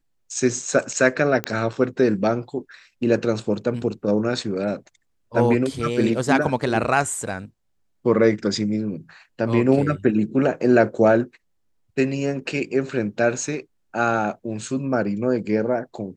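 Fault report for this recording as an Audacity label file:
1.440000	1.440000	pop -9 dBFS

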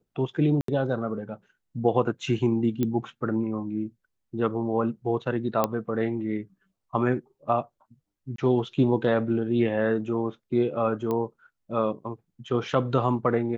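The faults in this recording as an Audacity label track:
0.610000	0.680000	gap 73 ms
2.830000	2.830000	pop -14 dBFS
5.640000	5.640000	pop -10 dBFS
8.360000	8.380000	gap 23 ms
11.110000	11.110000	pop -17 dBFS

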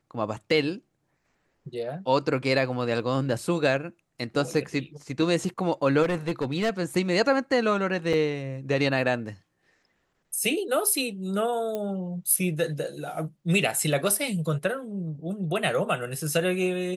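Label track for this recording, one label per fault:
6.020000	6.700000	clipped -21 dBFS
8.130000	8.140000	gap 5.5 ms
11.750000	11.750000	pop -18 dBFS

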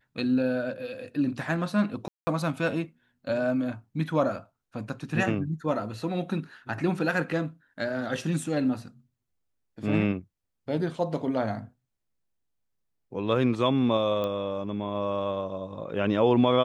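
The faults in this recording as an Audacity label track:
2.080000	2.270000	gap 0.19 s
14.240000	14.240000	pop -19 dBFS

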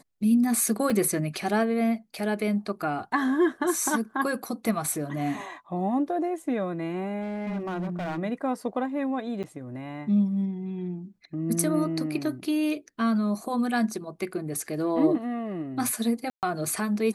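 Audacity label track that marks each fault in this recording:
0.900000	0.900000	gap 2.3 ms
7.220000	8.190000	clipped -27 dBFS
9.430000	9.440000	gap 7.9 ms
16.300000	16.430000	gap 0.128 s

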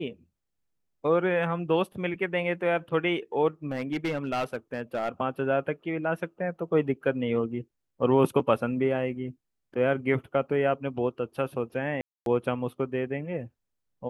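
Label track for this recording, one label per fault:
3.720000	5.090000	clipped -24 dBFS
12.010000	12.260000	gap 0.252 s

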